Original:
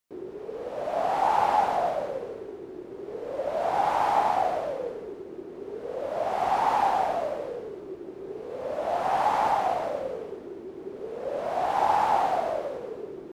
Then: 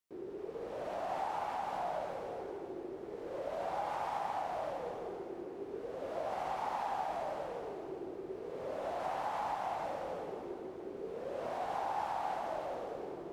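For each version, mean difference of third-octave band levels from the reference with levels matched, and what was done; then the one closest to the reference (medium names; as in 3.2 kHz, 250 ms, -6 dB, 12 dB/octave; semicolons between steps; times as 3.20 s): 4.5 dB: dynamic bell 480 Hz, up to -4 dB, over -35 dBFS, Q 1.2; compression, threshold -29 dBFS, peak gain reduction 9.5 dB; plate-style reverb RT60 3.1 s, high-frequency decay 0.9×, DRR 1.5 dB; trim -7 dB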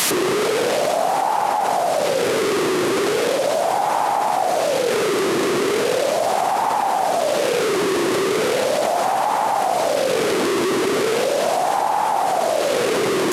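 11.0 dB: one-bit delta coder 64 kbps, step -30 dBFS; high-pass 120 Hz 24 dB/octave; level flattener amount 100%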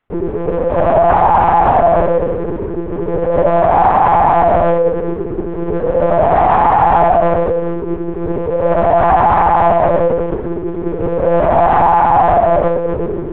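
6.5 dB: low-pass 1.8 kHz 12 dB/octave; monotone LPC vocoder at 8 kHz 170 Hz; loudness maximiser +21 dB; trim -1 dB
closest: first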